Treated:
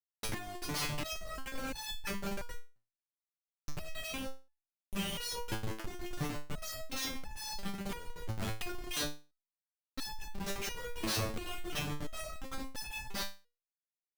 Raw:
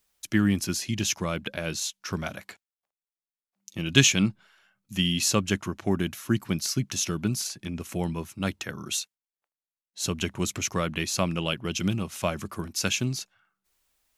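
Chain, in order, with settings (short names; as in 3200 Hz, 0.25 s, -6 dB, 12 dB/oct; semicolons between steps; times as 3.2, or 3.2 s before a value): in parallel at -6 dB: crossover distortion -46 dBFS; on the sum: bell 7100 Hz -14 dB 0.28 oct; flutter echo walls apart 8.4 m, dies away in 0.22 s; compressor 4:1, threshold -30 dBFS, peak gain reduction 17.5 dB; tilt shelf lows -6 dB, about 680 Hz; Schmitt trigger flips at -31.5 dBFS; stepped resonator 2.9 Hz 110–860 Hz; gain +11.5 dB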